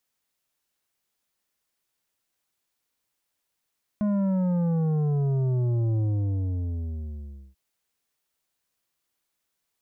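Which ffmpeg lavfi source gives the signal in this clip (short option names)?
-f lavfi -i "aevalsrc='0.075*clip((3.54-t)/1.57,0,1)*tanh(2.82*sin(2*PI*210*3.54/log(65/210)*(exp(log(65/210)*t/3.54)-1)))/tanh(2.82)':d=3.54:s=44100"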